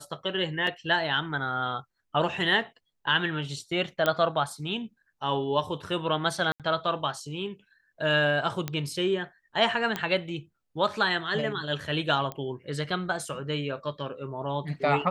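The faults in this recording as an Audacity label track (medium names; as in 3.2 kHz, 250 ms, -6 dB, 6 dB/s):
0.670000	0.670000	dropout 2.9 ms
4.060000	4.060000	pop -11 dBFS
6.520000	6.600000	dropout 77 ms
8.680000	8.680000	pop -15 dBFS
9.960000	9.960000	pop -14 dBFS
12.320000	12.320000	pop -20 dBFS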